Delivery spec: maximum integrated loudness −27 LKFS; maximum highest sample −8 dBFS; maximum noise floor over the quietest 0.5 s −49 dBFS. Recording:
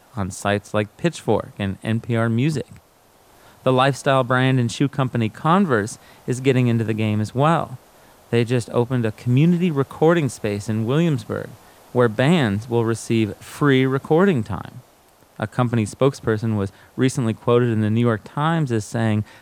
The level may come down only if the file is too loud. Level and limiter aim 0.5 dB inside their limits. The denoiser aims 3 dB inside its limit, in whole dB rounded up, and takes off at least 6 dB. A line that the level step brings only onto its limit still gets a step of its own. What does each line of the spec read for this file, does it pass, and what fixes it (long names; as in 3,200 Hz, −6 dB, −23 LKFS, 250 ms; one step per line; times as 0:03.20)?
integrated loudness −20.5 LKFS: out of spec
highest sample −4.0 dBFS: out of spec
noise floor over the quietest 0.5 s −54 dBFS: in spec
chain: level −7 dB